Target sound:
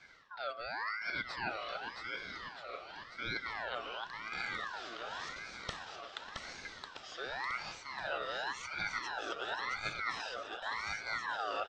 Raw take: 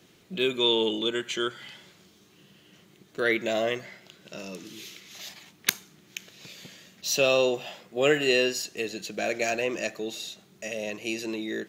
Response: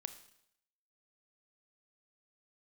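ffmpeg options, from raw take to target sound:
-af "areverse,acompressor=threshold=-36dB:ratio=12,areverse,highpass=180,equalizer=f=230:t=q:w=4:g=8,equalizer=f=730:t=q:w=4:g=-10,equalizer=f=3.4k:t=q:w=4:g=-7,lowpass=f=4k:w=0.5412,lowpass=f=4k:w=1.3066,aecho=1:1:670|1273|1816|2304|2744:0.631|0.398|0.251|0.158|0.1,aeval=exprs='val(0)*sin(2*PI*1400*n/s+1400*0.35/0.91*sin(2*PI*0.91*n/s))':c=same,volume=3dB"

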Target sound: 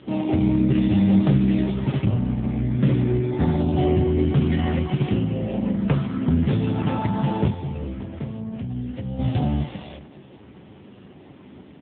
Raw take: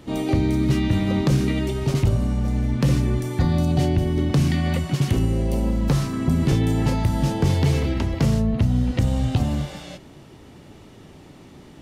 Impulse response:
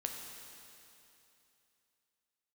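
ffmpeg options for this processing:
-filter_complex "[0:a]asettb=1/sr,asplit=3[a][b][c];[a]atrim=end=7.484[d];[b]atrim=start=7.48:end=9.19,asetpts=PTS-STARTPTS,afade=t=in:d=0.004:c=qsin,afade=t=out:st=1.706:d=0.004:c=qsin,acrossover=split=110|1200[e][f][g];[e]acompressor=threshold=-31dB:ratio=4[h];[f]acompressor=threshold=-33dB:ratio=4[i];[g]acompressor=threshold=-49dB:ratio=4[j];[h][i][j]amix=inputs=3:normalize=0[k];[c]atrim=start=9.186[l];[d][k]acrossfade=d=0.004:c1=hsin:c2=qsin[m];[m][l]acrossfade=d=0.004:c1=qsin:c2=hsin,asplit=2[n][o];[o]adelay=402.3,volume=-18dB,highshelf=f=4k:g=-9.05[p];[n][p]amix=inputs=2:normalize=0[q];[1:a]atrim=start_sample=2205,atrim=end_sample=3087,asetrate=70560,aresample=44100[r];[q][r]afir=irnorm=-1:irlink=0,volume=8dB" -ar 8000 -c:a libopencore_amrnb -b:a 5900

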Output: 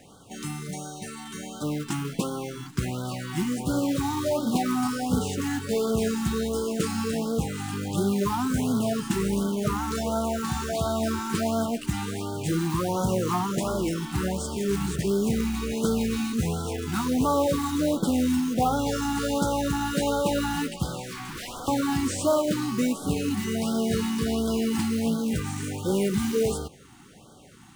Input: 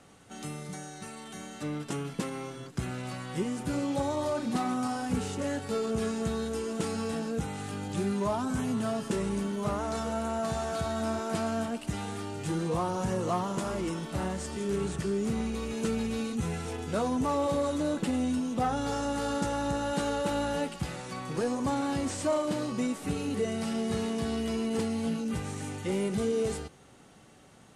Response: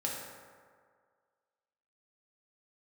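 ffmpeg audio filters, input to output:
-filter_complex "[0:a]asettb=1/sr,asplit=3[a][b][c];[a]atrim=end=21.034[d];[b]atrim=start=21.03:end=21.68,asetpts=PTS-STARTPTS,afade=t=in:d=0.004:c=qsin,afade=t=out:st=0.646:d=0.004:c=qsin,aeval=exprs='0.0141*(abs(mod(val(0)/0.0141+3,4)-2)-1)':c=same[e];[c]atrim=start=21.676[f];[d][e]acrossfade=d=0.004:c1=hsin:c2=qsin[g];[g][f]acrossfade=d=0.004:c1=qsin:c2=hsin,acrusher=bits=4:mode=log:mix=0:aa=0.000001,afftfilt=real='re*(1-between(b*sr/1024,490*pow(2200/490,0.5+0.5*sin(2*PI*1.4*pts/sr))/1.41,490*pow(2200/490,0.5+0.5*sin(2*PI*1.4*pts/sr))*1.41))':imag='im*(1-between(b*sr/1024,490*pow(2200/490,0.5+0.5*sin(2*PI*1.4*pts/sr))/1.41,490*pow(2200/490,0.5+0.5*sin(2*PI*1.4*pts/sr))*1.41))':win_size=1024:overlap=0.75,volume=5.5dB"

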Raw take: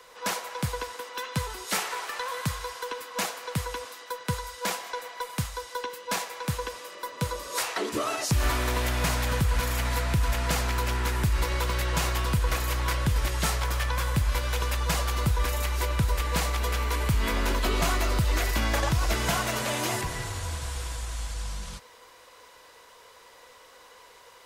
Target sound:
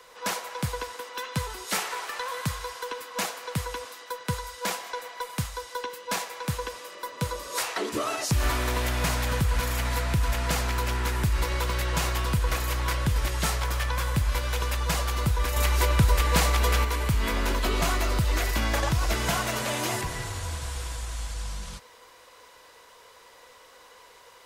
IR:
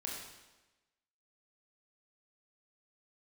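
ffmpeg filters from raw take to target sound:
-filter_complex "[0:a]asettb=1/sr,asplit=3[a][b][c];[a]atrim=end=15.564[d];[b]atrim=start=15.56:end=16.85,asetpts=PTS-STARTPTS,afade=t=in:d=0.004:c=qsin,afade=t=out:st=1.286:d=0.004:c=qsin,acontrast=23[e];[c]atrim=start=16.846[f];[d][e]acrossfade=d=0.004:c1=hsin:c2=qsin[g];[g][f]acrossfade=d=0.004:c1=qsin:c2=hsin"

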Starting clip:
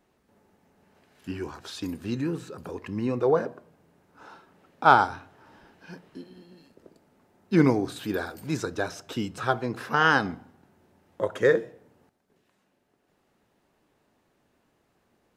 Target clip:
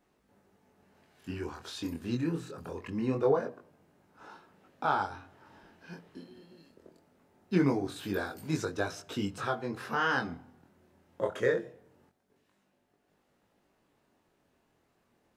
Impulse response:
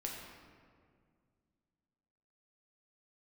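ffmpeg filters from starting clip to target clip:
-af "alimiter=limit=-13dB:level=0:latency=1:release=410,flanger=delay=19.5:depth=5:speed=0.23"

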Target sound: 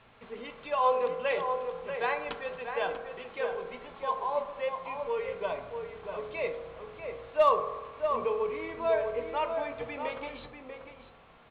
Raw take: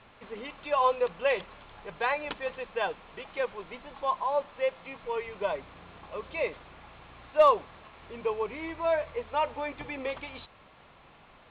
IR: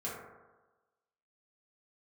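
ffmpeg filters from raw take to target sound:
-filter_complex "[0:a]asplit=2[a][b];[b]adelay=641.4,volume=-6dB,highshelf=f=4k:g=-14.4[c];[a][c]amix=inputs=2:normalize=0,asplit=2[d][e];[1:a]atrim=start_sample=2205[f];[e][f]afir=irnorm=-1:irlink=0,volume=-6.5dB[g];[d][g]amix=inputs=2:normalize=0,volume=-5dB"

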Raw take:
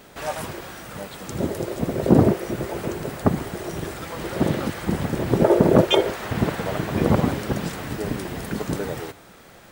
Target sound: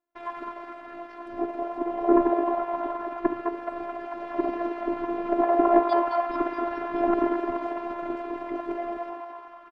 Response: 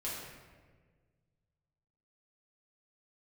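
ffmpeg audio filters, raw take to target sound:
-filter_complex "[0:a]asplit=9[a][b][c][d][e][f][g][h][i];[b]adelay=214,afreqshift=120,volume=-6.5dB[j];[c]adelay=428,afreqshift=240,volume=-10.9dB[k];[d]adelay=642,afreqshift=360,volume=-15.4dB[l];[e]adelay=856,afreqshift=480,volume=-19.8dB[m];[f]adelay=1070,afreqshift=600,volume=-24.2dB[n];[g]adelay=1284,afreqshift=720,volume=-28.7dB[o];[h]adelay=1498,afreqshift=840,volume=-33.1dB[p];[i]adelay=1712,afreqshift=960,volume=-37.6dB[q];[a][j][k][l][m][n][o][p][q]amix=inputs=9:normalize=0,asetrate=60591,aresample=44100,atempo=0.727827,highpass=f=260:p=1,afftfilt=real='hypot(re,im)*cos(PI*b)':imag='0':win_size=512:overlap=0.75,agate=range=-33dB:threshold=-46dB:ratio=16:detection=peak,lowpass=1.3k,volume=1dB"

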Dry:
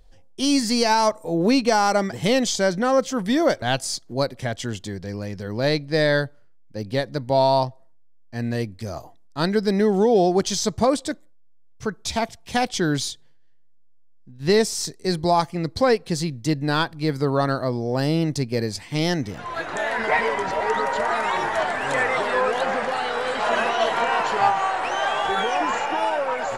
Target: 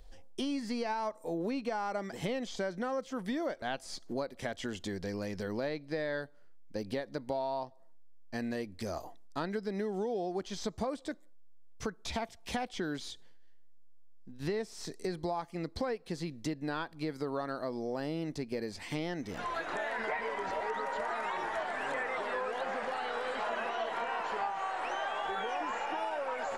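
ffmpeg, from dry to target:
-filter_complex "[0:a]acrossover=split=3100[a][b];[b]acompressor=threshold=-41dB:ratio=4:attack=1:release=60[c];[a][c]amix=inputs=2:normalize=0,equalizer=f=120:w=2.2:g=-14,acompressor=threshold=-34dB:ratio=5"

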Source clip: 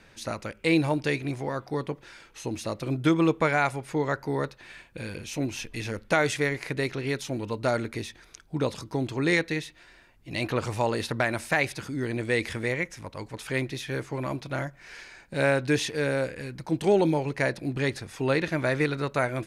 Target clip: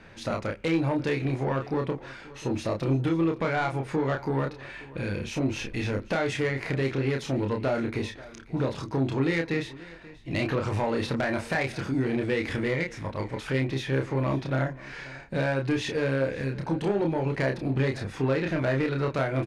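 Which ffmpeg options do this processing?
-filter_complex "[0:a]aemphasis=mode=reproduction:type=75fm,acompressor=threshold=-26dB:ratio=6,asoftclip=type=tanh:threshold=-25dB,asplit=2[a][b];[b]adelay=30,volume=-4dB[c];[a][c]amix=inputs=2:normalize=0,asplit=2[d][e];[e]aecho=0:1:534:0.106[f];[d][f]amix=inputs=2:normalize=0,volume=4.5dB"

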